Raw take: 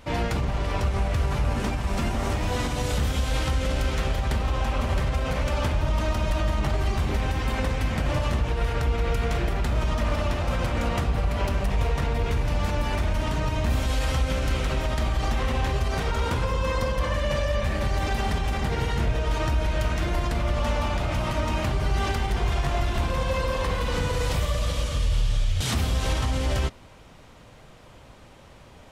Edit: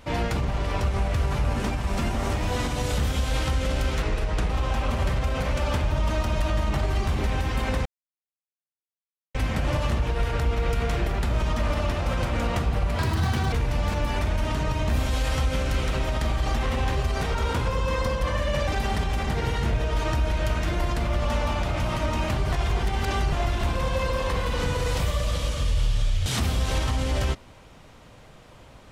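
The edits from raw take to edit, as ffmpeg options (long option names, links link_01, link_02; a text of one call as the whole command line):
ffmpeg -i in.wav -filter_complex "[0:a]asplit=9[link_01][link_02][link_03][link_04][link_05][link_06][link_07][link_08][link_09];[link_01]atrim=end=4.024[link_10];[link_02]atrim=start=4.02:end=4.4,asetpts=PTS-STARTPTS,asetrate=35280,aresample=44100[link_11];[link_03]atrim=start=4.396:end=7.76,asetpts=PTS-STARTPTS,afade=type=out:start_time=3.36:duration=0.004:curve=hsin,apad=pad_dur=1.49[link_12];[link_04]atrim=start=7.76:end=11.404,asetpts=PTS-STARTPTS,afade=type=in:duration=0.004:curve=hsin[link_13];[link_05]atrim=start=11.4:end=12.29,asetpts=PTS-STARTPTS,asetrate=72765,aresample=44100,atrim=end_sample=23787,asetpts=PTS-STARTPTS[link_14];[link_06]atrim=start=12.286:end=17.442[link_15];[link_07]atrim=start=18.018:end=21.872[link_16];[link_08]atrim=start=21.868:end=22.672,asetpts=PTS-STARTPTS,areverse[link_17];[link_09]atrim=start=22.668[link_18];[link_10][link_11]acrossfade=duration=0.004:curve1=hsin:curve2=hsin[link_19];[link_12][link_13]concat=n=2:v=0:a=1[link_20];[link_19][link_20]acrossfade=duration=0.004:curve1=hsin:curve2=hsin[link_21];[link_21][link_14]acrossfade=duration=0.004:curve1=hsin:curve2=hsin[link_22];[link_22][link_15]acrossfade=duration=0.004:curve1=hsin:curve2=hsin[link_23];[link_23][link_16]acrossfade=duration=0.004:curve1=hsin:curve2=hsin[link_24];[link_24][link_17]acrossfade=duration=0.004:curve1=hsin:curve2=hsin[link_25];[link_25][link_18]acrossfade=duration=0.004:curve1=hsin:curve2=hsin" out.wav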